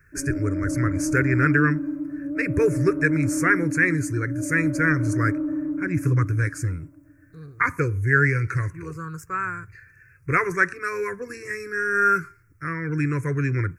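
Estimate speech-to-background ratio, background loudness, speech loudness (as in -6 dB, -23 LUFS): 4.5 dB, -28.0 LUFS, -23.5 LUFS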